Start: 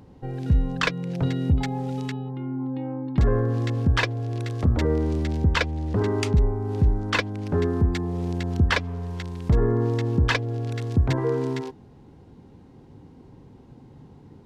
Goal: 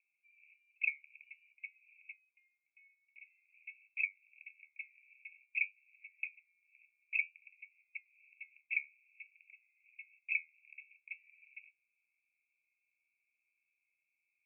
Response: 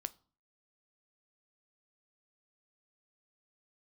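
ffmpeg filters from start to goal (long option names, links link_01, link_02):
-af "asuperpass=centerf=2400:order=12:qfactor=5.2,flanger=delay=9.4:depth=4.6:regen=67:speed=0.51:shape=triangular,volume=2.5dB"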